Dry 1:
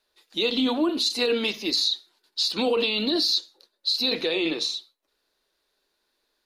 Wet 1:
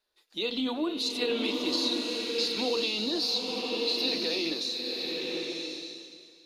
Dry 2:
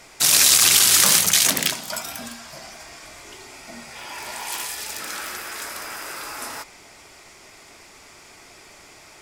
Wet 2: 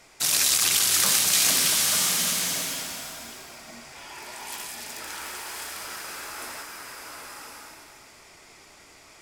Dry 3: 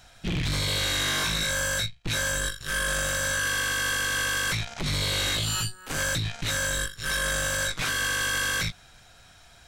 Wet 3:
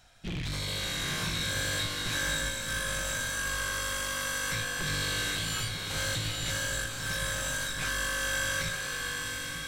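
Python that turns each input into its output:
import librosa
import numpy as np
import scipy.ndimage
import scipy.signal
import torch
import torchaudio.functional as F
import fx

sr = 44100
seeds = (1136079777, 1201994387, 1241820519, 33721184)

y = fx.rev_bloom(x, sr, seeds[0], attack_ms=1070, drr_db=0.5)
y = y * librosa.db_to_amplitude(-7.0)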